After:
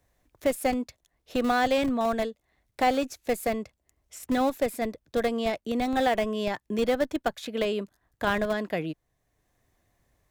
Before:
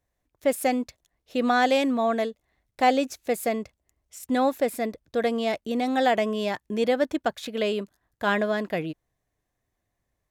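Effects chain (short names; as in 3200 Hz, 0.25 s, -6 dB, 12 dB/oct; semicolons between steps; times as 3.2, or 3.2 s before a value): in parallel at -6 dB: Schmitt trigger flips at -19.5 dBFS; on the sum: three-band squash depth 40%; gain -3 dB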